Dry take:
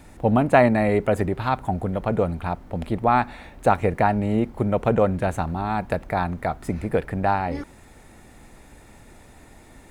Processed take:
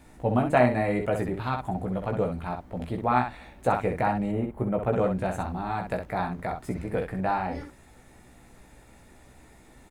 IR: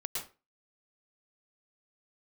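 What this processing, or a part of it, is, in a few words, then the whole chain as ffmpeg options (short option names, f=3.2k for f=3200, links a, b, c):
slapback doubling: -filter_complex "[0:a]asplit=3[a][b][c];[b]adelay=16,volume=-4dB[d];[c]adelay=64,volume=-6dB[e];[a][d][e]amix=inputs=3:normalize=0,asettb=1/sr,asplit=3[f][g][h];[f]atrim=end=4.314[i];[g]atrim=start=4.31:end=4.93,asetpts=PTS-STARTPTS,afade=t=in:d=0.004:c=qsin,afade=t=out:st=0.616:d=0.004:c=qsin,equalizer=f=5k:t=o:w=1.5:g=-12.5[j];[h]atrim=start=4.926[k];[i][j]acrossfade=d=0.004:c1=hsin:c2=qsin[l];[l][k]acrossfade=d=0.004:c1=qsin:c2=hsin,volume=-7dB"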